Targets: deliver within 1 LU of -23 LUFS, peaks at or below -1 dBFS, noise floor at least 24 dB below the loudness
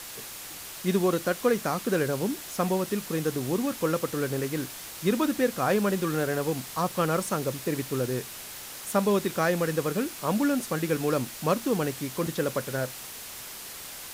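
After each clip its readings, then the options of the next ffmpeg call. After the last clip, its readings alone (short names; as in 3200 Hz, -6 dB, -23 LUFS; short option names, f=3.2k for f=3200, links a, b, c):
noise floor -41 dBFS; noise floor target -53 dBFS; loudness -28.5 LUFS; peak -11.0 dBFS; loudness target -23.0 LUFS
-> -af "afftdn=nr=12:nf=-41"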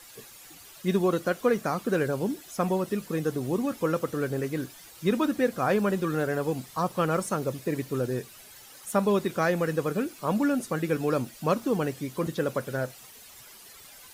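noise floor -49 dBFS; noise floor target -52 dBFS
-> -af "afftdn=nr=6:nf=-49"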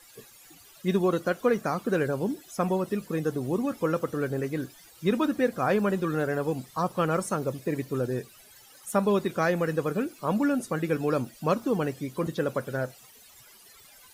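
noise floor -54 dBFS; loudness -28.0 LUFS; peak -11.5 dBFS; loudness target -23.0 LUFS
-> -af "volume=5dB"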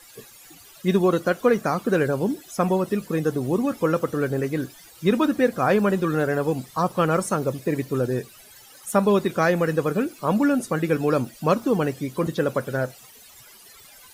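loudness -23.0 LUFS; peak -6.5 dBFS; noise floor -49 dBFS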